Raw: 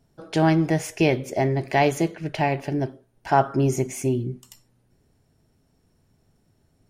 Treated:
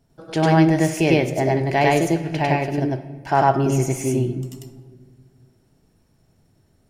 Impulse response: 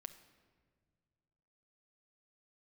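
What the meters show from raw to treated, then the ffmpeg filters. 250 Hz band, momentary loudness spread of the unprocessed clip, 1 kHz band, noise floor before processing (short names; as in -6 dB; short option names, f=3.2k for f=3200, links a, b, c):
+4.0 dB, 9 LU, +4.0 dB, -66 dBFS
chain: -filter_complex "[0:a]asplit=2[a][b];[1:a]atrim=start_sample=2205,adelay=99[c];[b][c]afir=irnorm=-1:irlink=0,volume=6.5dB[d];[a][d]amix=inputs=2:normalize=0"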